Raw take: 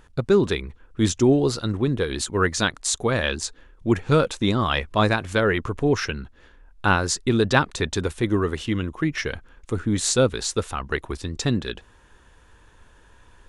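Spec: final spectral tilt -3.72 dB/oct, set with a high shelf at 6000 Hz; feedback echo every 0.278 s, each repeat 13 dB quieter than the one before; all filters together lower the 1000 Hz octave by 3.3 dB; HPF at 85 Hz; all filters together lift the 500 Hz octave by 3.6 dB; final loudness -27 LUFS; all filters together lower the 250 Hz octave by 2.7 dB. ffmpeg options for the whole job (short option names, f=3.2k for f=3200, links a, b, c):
-af "highpass=85,equalizer=f=250:t=o:g=-6.5,equalizer=f=500:t=o:g=8,equalizer=f=1k:t=o:g=-7,highshelf=f=6k:g=8.5,aecho=1:1:278|556|834:0.224|0.0493|0.0108,volume=-5dB"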